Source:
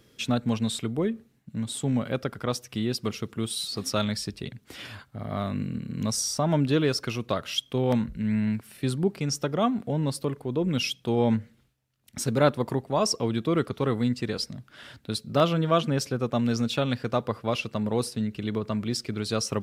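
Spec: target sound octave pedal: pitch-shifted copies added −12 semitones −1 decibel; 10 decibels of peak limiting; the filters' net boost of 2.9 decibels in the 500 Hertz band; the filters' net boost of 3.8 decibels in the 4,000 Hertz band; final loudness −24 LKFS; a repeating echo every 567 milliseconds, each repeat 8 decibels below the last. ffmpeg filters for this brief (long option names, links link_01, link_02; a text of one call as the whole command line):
ffmpeg -i in.wav -filter_complex "[0:a]equalizer=frequency=500:width_type=o:gain=3.5,equalizer=frequency=4000:width_type=o:gain=5,alimiter=limit=-15.5dB:level=0:latency=1,aecho=1:1:567|1134|1701|2268|2835:0.398|0.159|0.0637|0.0255|0.0102,asplit=2[link_01][link_02];[link_02]asetrate=22050,aresample=44100,atempo=2,volume=-1dB[link_03];[link_01][link_03]amix=inputs=2:normalize=0,volume=1dB" out.wav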